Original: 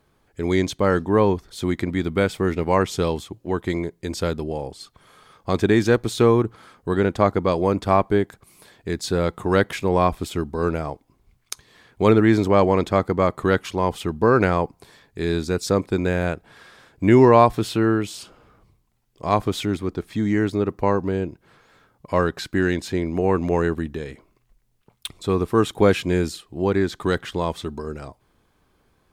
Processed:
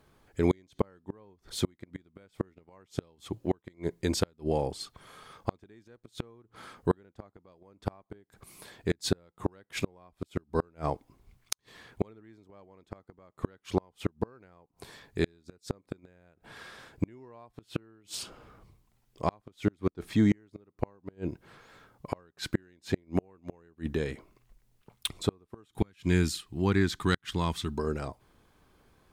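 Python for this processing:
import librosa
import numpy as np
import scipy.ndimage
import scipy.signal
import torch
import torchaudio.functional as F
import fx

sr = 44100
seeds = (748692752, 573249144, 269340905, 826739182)

y = fx.peak_eq(x, sr, hz=550.0, db=-14.0, octaves=1.3, at=(25.69, 27.78))
y = fx.gate_flip(y, sr, shuts_db=-13.0, range_db=-38)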